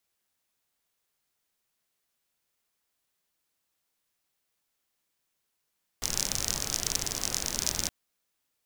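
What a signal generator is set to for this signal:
rain-like ticks over hiss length 1.87 s, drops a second 45, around 5,900 Hz, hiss −5 dB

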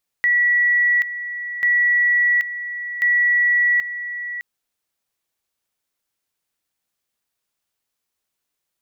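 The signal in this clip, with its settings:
tone at two levels in turn 1,940 Hz −13.5 dBFS, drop 12 dB, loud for 0.78 s, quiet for 0.61 s, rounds 3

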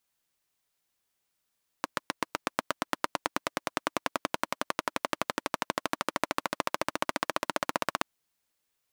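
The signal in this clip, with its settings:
pulse-train model of a single-cylinder engine, changing speed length 6.18 s, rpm 900, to 1,900, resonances 310/600/990 Hz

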